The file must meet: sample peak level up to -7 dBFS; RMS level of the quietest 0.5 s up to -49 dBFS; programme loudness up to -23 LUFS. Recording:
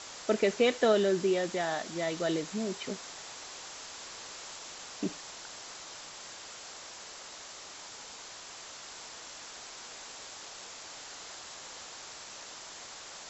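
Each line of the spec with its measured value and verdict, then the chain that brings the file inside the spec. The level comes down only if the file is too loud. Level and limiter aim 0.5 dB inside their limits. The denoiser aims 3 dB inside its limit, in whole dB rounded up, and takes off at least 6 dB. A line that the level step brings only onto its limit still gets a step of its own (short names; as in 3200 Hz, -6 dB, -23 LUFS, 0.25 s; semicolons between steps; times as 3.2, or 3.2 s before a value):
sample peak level -13.5 dBFS: OK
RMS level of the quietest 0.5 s -47 dBFS: fail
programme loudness -35.5 LUFS: OK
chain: denoiser 6 dB, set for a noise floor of -47 dBFS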